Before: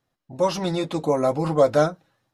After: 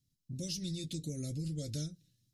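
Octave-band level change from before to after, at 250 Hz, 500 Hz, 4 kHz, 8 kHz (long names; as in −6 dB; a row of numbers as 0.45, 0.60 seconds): −14.0, −29.0, −8.0, −3.5 decibels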